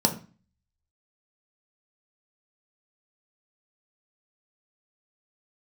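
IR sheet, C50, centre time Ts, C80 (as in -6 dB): 12.5 dB, 11 ms, 17.0 dB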